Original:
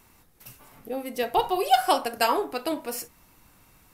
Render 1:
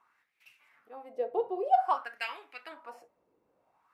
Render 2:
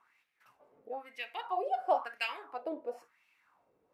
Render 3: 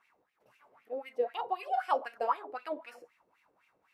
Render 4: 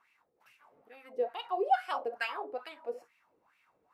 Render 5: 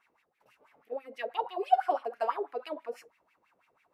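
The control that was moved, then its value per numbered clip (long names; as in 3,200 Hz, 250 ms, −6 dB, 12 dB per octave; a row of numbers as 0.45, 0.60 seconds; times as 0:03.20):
LFO wah, speed: 0.52, 0.99, 3.9, 2.3, 6.1 Hertz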